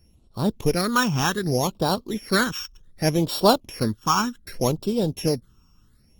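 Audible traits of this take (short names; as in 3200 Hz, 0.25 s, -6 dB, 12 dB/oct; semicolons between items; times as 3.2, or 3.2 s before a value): a buzz of ramps at a fixed pitch in blocks of 8 samples; phasing stages 8, 0.66 Hz, lowest notch 570–2000 Hz; Opus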